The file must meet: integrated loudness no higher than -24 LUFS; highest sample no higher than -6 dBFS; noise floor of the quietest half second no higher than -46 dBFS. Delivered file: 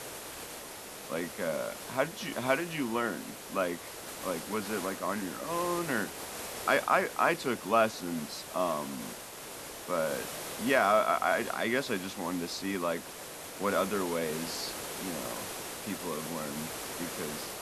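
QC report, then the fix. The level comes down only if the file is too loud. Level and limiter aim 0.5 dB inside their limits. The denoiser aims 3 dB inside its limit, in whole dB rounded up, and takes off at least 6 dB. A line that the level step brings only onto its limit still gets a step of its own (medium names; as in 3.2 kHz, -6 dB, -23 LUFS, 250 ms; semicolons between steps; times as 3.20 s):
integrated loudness -32.5 LUFS: pass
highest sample -11.5 dBFS: pass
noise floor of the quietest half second -44 dBFS: fail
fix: noise reduction 6 dB, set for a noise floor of -44 dBFS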